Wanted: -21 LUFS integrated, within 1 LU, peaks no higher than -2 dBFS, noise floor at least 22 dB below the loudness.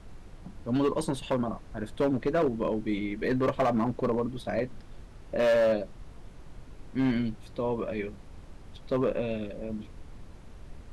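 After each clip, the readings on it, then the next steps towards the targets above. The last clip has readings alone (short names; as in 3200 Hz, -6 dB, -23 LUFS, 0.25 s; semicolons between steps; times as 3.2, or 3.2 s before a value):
clipped 1.6%; flat tops at -20.0 dBFS; noise floor -48 dBFS; noise floor target -52 dBFS; loudness -29.5 LUFS; peak -20.0 dBFS; loudness target -21.0 LUFS
-> clip repair -20 dBFS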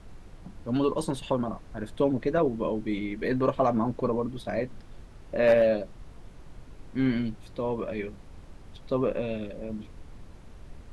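clipped 0.0%; noise floor -48 dBFS; noise floor target -51 dBFS
-> noise print and reduce 6 dB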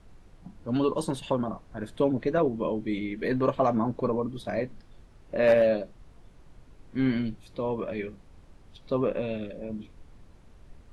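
noise floor -54 dBFS; loudness -28.5 LUFS; peak -11.0 dBFS; loudness target -21.0 LUFS
-> gain +7.5 dB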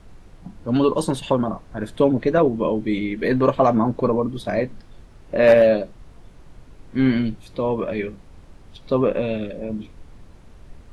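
loudness -21.0 LUFS; peak -3.5 dBFS; noise floor -47 dBFS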